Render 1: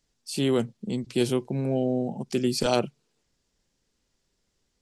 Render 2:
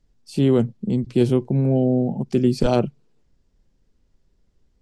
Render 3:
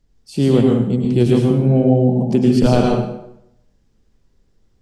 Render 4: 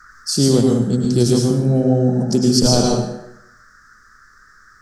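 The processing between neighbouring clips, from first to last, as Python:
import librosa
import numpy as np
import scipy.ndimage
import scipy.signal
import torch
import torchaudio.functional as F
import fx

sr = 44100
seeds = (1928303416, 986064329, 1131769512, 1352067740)

y1 = fx.tilt_eq(x, sr, slope=-3.0)
y1 = y1 * librosa.db_to_amplitude(1.5)
y2 = fx.rev_plate(y1, sr, seeds[0], rt60_s=0.78, hf_ratio=0.8, predelay_ms=90, drr_db=-1.5)
y2 = y2 * librosa.db_to_amplitude(2.0)
y3 = fx.dmg_noise_band(y2, sr, seeds[1], low_hz=1200.0, high_hz=1800.0, level_db=-47.0)
y3 = fx.rider(y3, sr, range_db=5, speed_s=0.5)
y3 = fx.high_shelf_res(y3, sr, hz=3800.0, db=13.0, q=3.0)
y3 = y3 * librosa.db_to_amplitude(-1.0)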